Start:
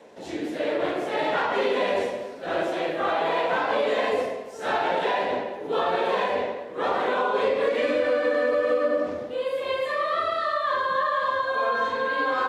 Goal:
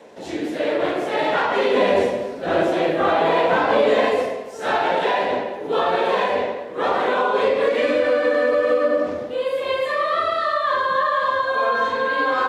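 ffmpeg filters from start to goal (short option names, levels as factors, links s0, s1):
-filter_complex "[0:a]asettb=1/sr,asplit=3[s0][s1][s2];[s0]atrim=end=1.734[s3];[s1]atrim=start=1.73:end=4.09,asetpts=PTS-STARTPTS,afade=t=in:d=0.004:c=qsin,afade=t=out:st=2.356:d=0.004:c=qsin,lowshelf=f=420:g=7.5[s4];[s2]atrim=start=4.086[s5];[s3][s4]acrossfade=d=0.004:c1=hsin:c2=qsin[s6];[s6][s5]acrossfade=d=0.004:c1=qsin:c2=hsin,volume=1.68"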